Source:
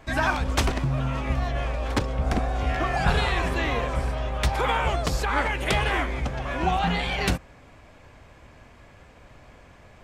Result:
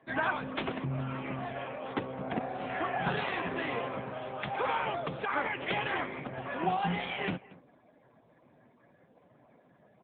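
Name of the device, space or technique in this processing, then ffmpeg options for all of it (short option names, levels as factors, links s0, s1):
mobile call with aggressive noise cancelling: -filter_complex "[0:a]highpass=f=140:w=0.5412,highpass=f=140:w=1.3066,asplit=2[s0][s1];[s1]adelay=233.2,volume=0.0891,highshelf=f=4000:g=-5.25[s2];[s0][s2]amix=inputs=2:normalize=0,afftdn=nr=36:nf=-49,volume=0.562" -ar 8000 -c:a libopencore_amrnb -b:a 7950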